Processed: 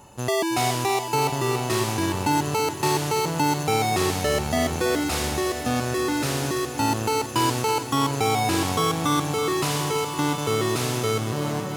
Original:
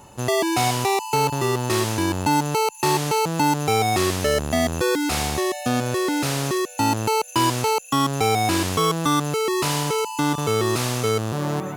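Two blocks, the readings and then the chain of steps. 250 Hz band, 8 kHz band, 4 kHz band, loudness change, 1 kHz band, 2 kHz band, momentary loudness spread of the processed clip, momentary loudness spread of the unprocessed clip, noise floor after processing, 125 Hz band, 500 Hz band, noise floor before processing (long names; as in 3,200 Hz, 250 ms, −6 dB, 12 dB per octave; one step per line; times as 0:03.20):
−2.0 dB, −2.0 dB, −1.5 dB, −2.0 dB, −2.0 dB, −1.5 dB, 3 LU, 3 LU, −31 dBFS, −2.0 dB, −2.0 dB, −40 dBFS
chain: feedback echo at a low word length 328 ms, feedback 80%, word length 8 bits, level −11.5 dB
level −2.5 dB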